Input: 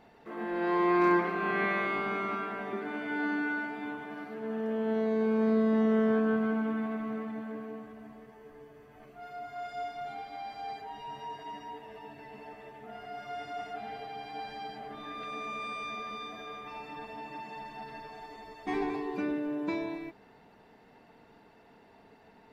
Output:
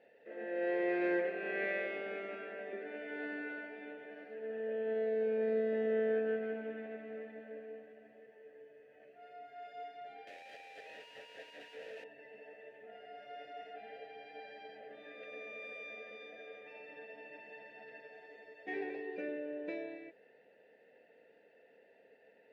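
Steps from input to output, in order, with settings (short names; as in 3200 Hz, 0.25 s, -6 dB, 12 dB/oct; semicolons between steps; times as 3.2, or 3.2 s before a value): 10.27–12.04 infinite clipping; added harmonics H 7 -35 dB, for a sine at -16 dBFS; vowel filter e; gain +7 dB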